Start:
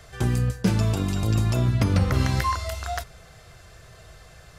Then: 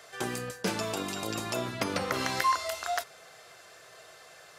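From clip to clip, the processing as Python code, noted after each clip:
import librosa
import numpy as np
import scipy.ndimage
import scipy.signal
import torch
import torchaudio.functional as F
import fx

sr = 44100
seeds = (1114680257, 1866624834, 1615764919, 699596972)

y = scipy.signal.sosfilt(scipy.signal.butter(2, 400.0, 'highpass', fs=sr, output='sos'), x)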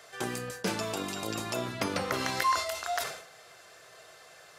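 y = fx.sustainer(x, sr, db_per_s=84.0)
y = y * librosa.db_to_amplitude(-1.0)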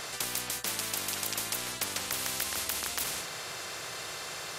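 y = fx.spectral_comp(x, sr, ratio=10.0)
y = y * librosa.db_to_amplitude(1.5)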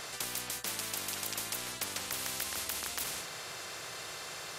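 y = 10.0 ** (-13.5 / 20.0) * np.tanh(x / 10.0 ** (-13.5 / 20.0))
y = y * librosa.db_to_amplitude(-3.5)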